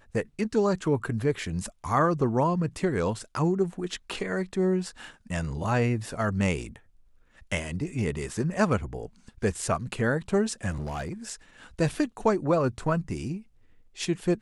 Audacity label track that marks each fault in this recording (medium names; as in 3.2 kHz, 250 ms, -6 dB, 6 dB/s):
10.710000	11.130000	clipped -28.5 dBFS